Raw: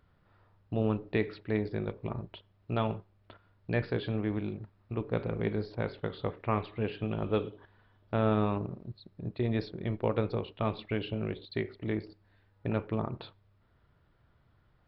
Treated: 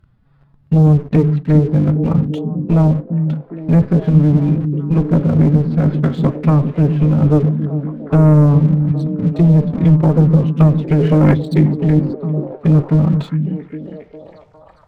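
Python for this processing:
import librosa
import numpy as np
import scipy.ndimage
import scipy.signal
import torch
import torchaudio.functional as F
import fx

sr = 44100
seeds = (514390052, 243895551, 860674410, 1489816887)

y = fx.env_lowpass_down(x, sr, base_hz=830.0, full_db=-27.0)
y = fx.spec_box(y, sr, start_s=10.99, length_s=0.36, low_hz=340.0, high_hz=2300.0, gain_db=12)
y = fx.pitch_keep_formants(y, sr, semitones=6.0)
y = fx.bass_treble(y, sr, bass_db=12, treble_db=1)
y = fx.leveller(y, sr, passes=2)
y = fx.echo_stepped(y, sr, ms=406, hz=200.0, octaves=0.7, feedback_pct=70, wet_db=-4)
y = F.gain(torch.from_numpy(y), 6.0).numpy()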